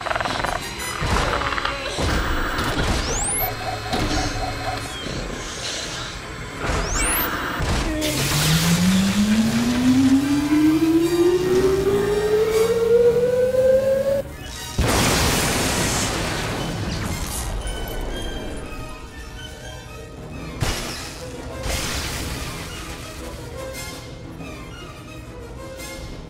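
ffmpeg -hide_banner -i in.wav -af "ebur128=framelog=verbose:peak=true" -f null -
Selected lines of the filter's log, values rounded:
Integrated loudness:
  I:         -21.2 LUFS
  Threshold: -32.1 LUFS
Loudness range:
  LRA:        12.9 LU
  Threshold: -41.8 LUFS
  LRA low:   -30.9 LUFS
  LRA high:  -18.0 LUFS
True peak:
  Peak:       -4.4 dBFS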